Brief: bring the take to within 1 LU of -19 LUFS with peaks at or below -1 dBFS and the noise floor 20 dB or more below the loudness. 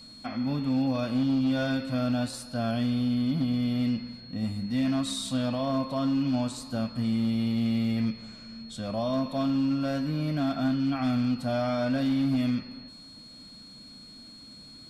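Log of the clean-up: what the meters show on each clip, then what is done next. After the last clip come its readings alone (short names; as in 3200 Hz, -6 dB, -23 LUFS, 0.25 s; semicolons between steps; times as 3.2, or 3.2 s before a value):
clipped 1.2%; flat tops at -21.0 dBFS; steady tone 4300 Hz; tone level -47 dBFS; loudness -28.0 LUFS; peak -21.0 dBFS; loudness target -19.0 LUFS
-> clip repair -21 dBFS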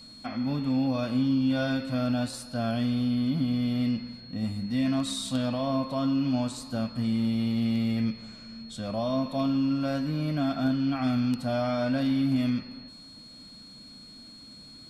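clipped 0.0%; steady tone 4300 Hz; tone level -47 dBFS
-> notch 4300 Hz, Q 30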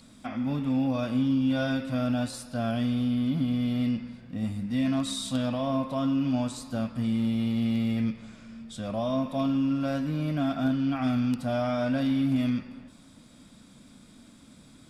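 steady tone none; loudness -28.0 LUFS; peak -14.0 dBFS; loudness target -19.0 LUFS
-> gain +9 dB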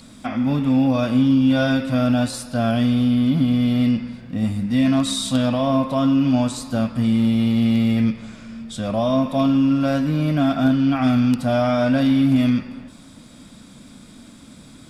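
loudness -19.0 LUFS; peak -5.0 dBFS; noise floor -45 dBFS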